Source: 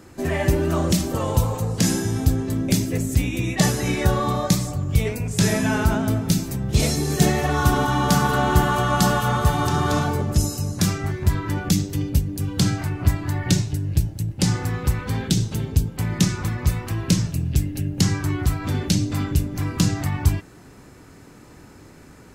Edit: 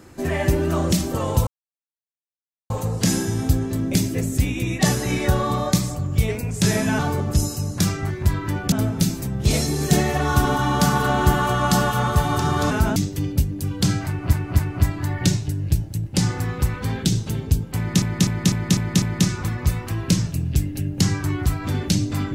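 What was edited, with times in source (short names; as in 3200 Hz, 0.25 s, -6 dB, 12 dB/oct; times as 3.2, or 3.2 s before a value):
1.47 insert silence 1.23 s
5.76–6.01 swap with 10–11.73
12.84–13.1 loop, 3 plays
16.02–16.27 loop, 6 plays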